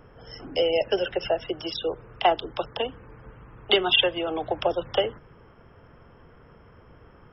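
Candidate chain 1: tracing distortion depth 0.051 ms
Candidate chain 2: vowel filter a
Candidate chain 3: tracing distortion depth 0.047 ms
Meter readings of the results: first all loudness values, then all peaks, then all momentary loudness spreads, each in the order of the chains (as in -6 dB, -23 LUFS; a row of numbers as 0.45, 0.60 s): -25.5, -34.5, -25.5 LUFS; -6.5, -12.0, -6.5 dBFS; 12, 17, 12 LU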